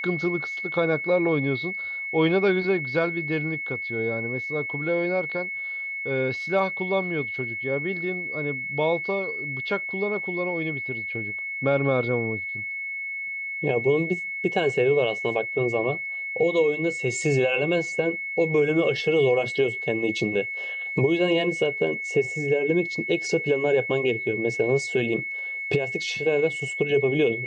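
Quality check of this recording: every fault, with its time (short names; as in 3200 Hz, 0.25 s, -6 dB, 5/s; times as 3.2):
tone 2200 Hz -29 dBFS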